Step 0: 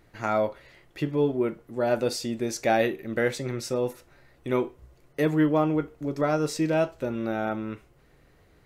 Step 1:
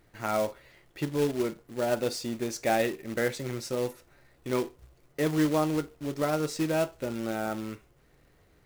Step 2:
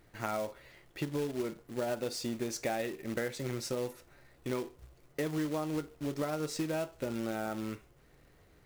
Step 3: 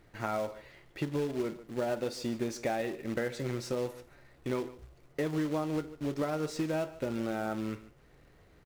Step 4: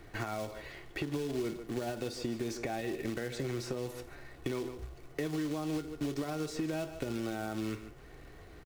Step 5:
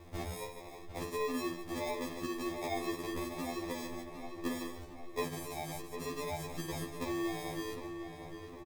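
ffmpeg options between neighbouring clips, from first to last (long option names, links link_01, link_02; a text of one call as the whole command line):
ffmpeg -i in.wav -af "acrusher=bits=3:mode=log:mix=0:aa=0.000001,volume=-3.5dB" out.wav
ffmpeg -i in.wav -af "acompressor=threshold=-31dB:ratio=6" out.wav
ffmpeg -i in.wav -filter_complex "[0:a]highshelf=frequency=7100:gain=-8,acrossover=split=1700[link_01][link_02];[link_02]asoftclip=type=tanh:threshold=-39.5dB[link_03];[link_01][link_03]amix=inputs=2:normalize=0,aecho=1:1:147:0.133,volume=2dB" out.wav
ffmpeg -i in.wav -filter_complex "[0:a]alimiter=level_in=3dB:limit=-24dB:level=0:latency=1:release=102,volume=-3dB,acrossover=split=220|2700[link_01][link_02][link_03];[link_01]acompressor=threshold=-46dB:ratio=4[link_04];[link_02]acompressor=threshold=-45dB:ratio=4[link_05];[link_03]acompressor=threshold=-55dB:ratio=4[link_06];[link_04][link_05][link_06]amix=inputs=3:normalize=0,aecho=1:1:2.7:0.33,volume=7.5dB" out.wav
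ffmpeg -i in.wav -filter_complex "[0:a]acrusher=samples=30:mix=1:aa=0.000001,asplit=2[link_01][link_02];[link_02]adelay=755,lowpass=frequency=3100:poles=1,volume=-8dB,asplit=2[link_03][link_04];[link_04]adelay=755,lowpass=frequency=3100:poles=1,volume=0.53,asplit=2[link_05][link_06];[link_06]adelay=755,lowpass=frequency=3100:poles=1,volume=0.53,asplit=2[link_07][link_08];[link_08]adelay=755,lowpass=frequency=3100:poles=1,volume=0.53,asplit=2[link_09][link_10];[link_10]adelay=755,lowpass=frequency=3100:poles=1,volume=0.53,asplit=2[link_11][link_12];[link_12]adelay=755,lowpass=frequency=3100:poles=1,volume=0.53[link_13];[link_01][link_03][link_05][link_07][link_09][link_11][link_13]amix=inputs=7:normalize=0,afftfilt=real='re*2*eq(mod(b,4),0)':imag='im*2*eq(mod(b,4),0)':win_size=2048:overlap=0.75,volume=1dB" out.wav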